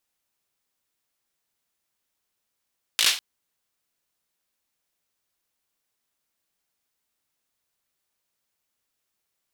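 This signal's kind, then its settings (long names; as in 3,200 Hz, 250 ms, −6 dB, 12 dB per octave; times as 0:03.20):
synth clap length 0.20 s, bursts 5, apart 18 ms, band 3,300 Hz, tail 0.32 s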